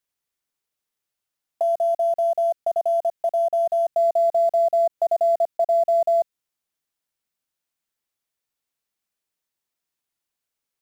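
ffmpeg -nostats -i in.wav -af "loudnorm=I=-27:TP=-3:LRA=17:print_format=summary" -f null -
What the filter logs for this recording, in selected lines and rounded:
Input Integrated:    -21.4 LUFS
Input True Peak:     -13.0 dBTP
Input LRA:             4.4 LU
Input Threshold:     -31.5 LUFS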